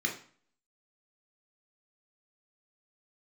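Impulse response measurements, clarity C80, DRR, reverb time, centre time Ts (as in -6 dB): 13.5 dB, 0.5 dB, 0.45 s, 21 ms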